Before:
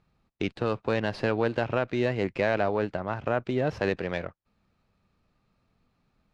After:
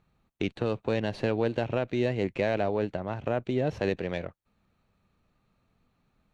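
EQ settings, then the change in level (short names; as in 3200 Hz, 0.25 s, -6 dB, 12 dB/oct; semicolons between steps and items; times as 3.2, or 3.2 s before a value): notch 5000 Hz, Q 6.4; dynamic EQ 1300 Hz, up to -8 dB, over -43 dBFS, Q 1.2; 0.0 dB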